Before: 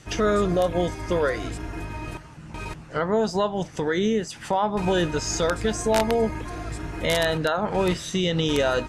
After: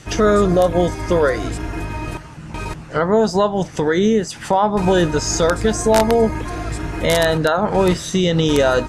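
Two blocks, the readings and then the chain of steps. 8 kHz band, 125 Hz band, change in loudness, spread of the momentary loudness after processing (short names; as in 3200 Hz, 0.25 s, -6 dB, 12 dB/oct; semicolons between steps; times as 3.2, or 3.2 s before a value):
+7.0 dB, +7.5 dB, +7.0 dB, 12 LU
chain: dynamic EQ 2700 Hz, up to -5 dB, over -42 dBFS, Q 1.3; gain +7.5 dB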